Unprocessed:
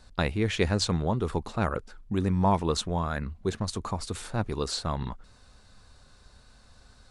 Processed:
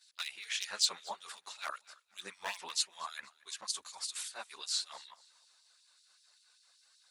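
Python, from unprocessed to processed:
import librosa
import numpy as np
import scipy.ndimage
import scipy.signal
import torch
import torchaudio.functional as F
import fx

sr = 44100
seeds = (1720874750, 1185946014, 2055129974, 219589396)

p1 = np.minimum(x, 2.0 * 10.0 ** (-18.0 / 20.0) - x)
p2 = fx.tilt_shelf(p1, sr, db=-9.0, hz=1400.0)
p3 = fx.rider(p2, sr, range_db=4, speed_s=2.0)
p4 = fx.filter_lfo_highpass(p3, sr, shape='sine', hz=5.2, low_hz=590.0, high_hz=3800.0, q=0.9)
p5 = fx.chorus_voices(p4, sr, voices=4, hz=1.4, base_ms=13, depth_ms=3.0, mix_pct=70)
p6 = p5 + fx.echo_feedback(p5, sr, ms=236, feedback_pct=36, wet_db=-22.0, dry=0)
y = p6 * 10.0 ** (-5.5 / 20.0)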